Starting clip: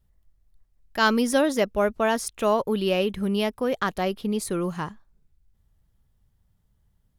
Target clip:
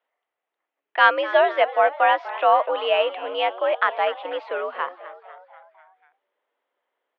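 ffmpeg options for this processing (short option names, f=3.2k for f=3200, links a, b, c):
-filter_complex "[0:a]asplit=6[a][b][c][d][e][f];[b]adelay=247,afreqshift=100,volume=-16.5dB[g];[c]adelay=494,afreqshift=200,volume=-21.4dB[h];[d]adelay=741,afreqshift=300,volume=-26.3dB[i];[e]adelay=988,afreqshift=400,volume=-31.1dB[j];[f]adelay=1235,afreqshift=500,volume=-36dB[k];[a][g][h][i][j][k]amix=inputs=6:normalize=0,highpass=f=450:t=q:w=0.5412,highpass=f=450:t=q:w=1.307,lowpass=f=3k:t=q:w=0.5176,lowpass=f=3k:t=q:w=0.7071,lowpass=f=3k:t=q:w=1.932,afreqshift=76,volume=6dB"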